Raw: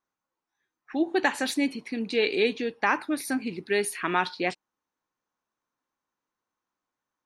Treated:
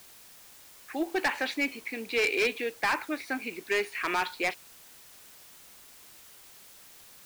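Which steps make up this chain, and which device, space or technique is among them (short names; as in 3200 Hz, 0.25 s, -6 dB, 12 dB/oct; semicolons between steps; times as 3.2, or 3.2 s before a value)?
drive-through speaker (BPF 410–3400 Hz; bell 2300 Hz +7 dB 0.45 oct; hard clip -21.5 dBFS, distortion -9 dB; white noise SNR 19 dB)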